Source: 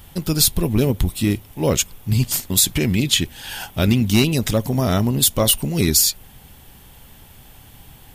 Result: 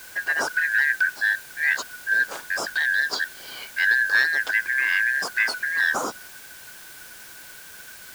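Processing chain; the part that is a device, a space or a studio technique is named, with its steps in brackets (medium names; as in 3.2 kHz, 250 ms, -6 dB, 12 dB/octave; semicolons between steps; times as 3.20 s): split-band scrambled radio (four frequency bands reordered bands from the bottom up 4123; band-pass 340–3300 Hz; white noise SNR 19 dB); trim -3.5 dB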